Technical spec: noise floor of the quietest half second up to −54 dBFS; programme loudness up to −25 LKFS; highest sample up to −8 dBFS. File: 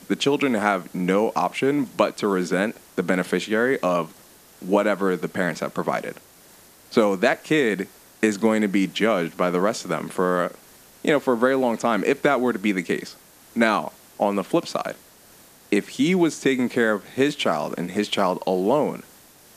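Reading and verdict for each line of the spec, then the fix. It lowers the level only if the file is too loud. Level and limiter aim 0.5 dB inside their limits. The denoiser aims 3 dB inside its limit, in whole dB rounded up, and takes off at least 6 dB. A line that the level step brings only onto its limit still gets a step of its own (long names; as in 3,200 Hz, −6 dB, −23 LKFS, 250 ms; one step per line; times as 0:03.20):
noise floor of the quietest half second −50 dBFS: out of spec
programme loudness −22.5 LKFS: out of spec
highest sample −3.5 dBFS: out of spec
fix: broadband denoise 6 dB, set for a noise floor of −50 dBFS
level −3 dB
brickwall limiter −8.5 dBFS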